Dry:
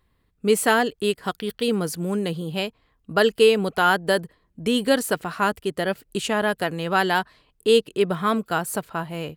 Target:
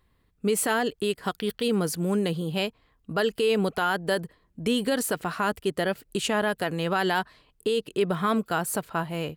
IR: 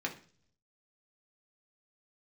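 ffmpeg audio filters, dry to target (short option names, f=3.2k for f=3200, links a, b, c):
-af "alimiter=limit=-15dB:level=0:latency=1:release=60"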